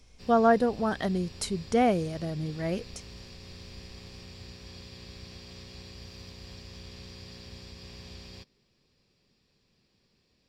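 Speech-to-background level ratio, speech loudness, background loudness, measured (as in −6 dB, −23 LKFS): 18.5 dB, −27.5 LKFS, −46.0 LKFS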